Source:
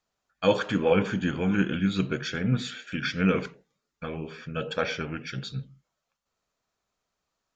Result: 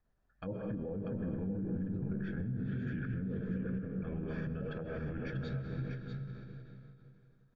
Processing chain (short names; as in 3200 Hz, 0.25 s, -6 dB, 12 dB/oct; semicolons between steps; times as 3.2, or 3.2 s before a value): bell 1700 Hz +10.5 dB 0.29 oct; treble ducked by the level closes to 560 Hz, closed at -21 dBFS; reverb RT60 2.8 s, pre-delay 75 ms, DRR 6.5 dB; compressor 6:1, threshold -33 dBFS, peak gain reduction 14.5 dB; tilt -4.5 dB/oct; limiter -26 dBFS, peak gain reduction 11.5 dB; echo 0.641 s -6.5 dB; ending taper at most 100 dB/s; gain -4.5 dB